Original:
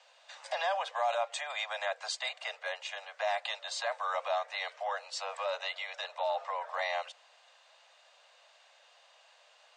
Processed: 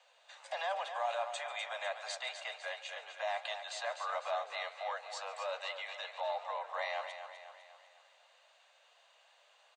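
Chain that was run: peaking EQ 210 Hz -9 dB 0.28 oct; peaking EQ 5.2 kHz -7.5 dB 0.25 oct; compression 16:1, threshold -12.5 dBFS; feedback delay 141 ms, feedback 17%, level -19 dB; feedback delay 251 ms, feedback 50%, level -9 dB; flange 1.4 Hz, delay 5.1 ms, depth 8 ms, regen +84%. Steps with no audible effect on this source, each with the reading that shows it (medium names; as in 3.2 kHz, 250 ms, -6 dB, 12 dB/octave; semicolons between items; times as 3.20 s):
peaking EQ 210 Hz: input has nothing below 430 Hz; compression, threshold -12.5 dBFS: peak at its input -19.0 dBFS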